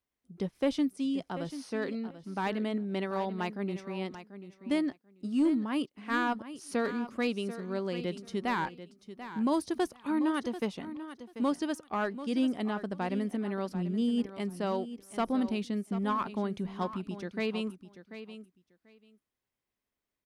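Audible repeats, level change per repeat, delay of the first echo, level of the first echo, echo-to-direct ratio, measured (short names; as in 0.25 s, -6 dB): 2, -16.0 dB, 0.739 s, -12.5 dB, -12.5 dB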